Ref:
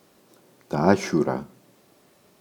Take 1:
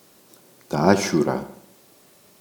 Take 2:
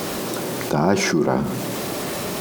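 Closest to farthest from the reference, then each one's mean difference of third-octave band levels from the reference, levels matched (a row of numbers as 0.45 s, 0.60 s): 1, 2; 4.0 dB, 8.0 dB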